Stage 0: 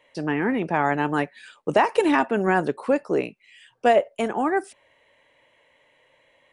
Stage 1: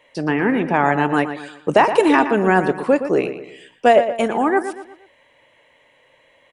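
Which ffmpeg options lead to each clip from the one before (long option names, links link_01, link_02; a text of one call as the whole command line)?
ffmpeg -i in.wav -filter_complex "[0:a]asplit=2[link_01][link_02];[link_02]adelay=118,lowpass=frequency=3900:poles=1,volume=-10dB,asplit=2[link_03][link_04];[link_04]adelay=118,lowpass=frequency=3900:poles=1,volume=0.41,asplit=2[link_05][link_06];[link_06]adelay=118,lowpass=frequency=3900:poles=1,volume=0.41,asplit=2[link_07][link_08];[link_08]adelay=118,lowpass=frequency=3900:poles=1,volume=0.41[link_09];[link_01][link_03][link_05][link_07][link_09]amix=inputs=5:normalize=0,volume=5dB" out.wav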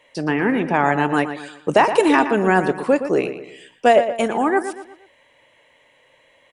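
ffmpeg -i in.wav -af "equalizer=frequency=7900:width_type=o:width=1.9:gain=4,volume=-1dB" out.wav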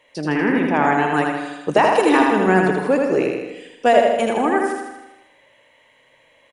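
ffmpeg -i in.wav -filter_complex "[0:a]bandreject=frequency=8000:width=15,asplit=2[link_01][link_02];[link_02]aecho=0:1:80|160|240|320|400|480|560|640:0.668|0.381|0.217|0.124|0.0706|0.0402|0.0229|0.0131[link_03];[link_01][link_03]amix=inputs=2:normalize=0,volume=-1.5dB" out.wav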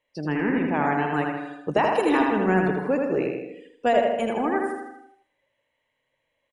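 ffmpeg -i in.wav -af "afftdn=noise_reduction=14:noise_floor=-38,lowshelf=frequency=140:gain=9,volume=-7dB" out.wav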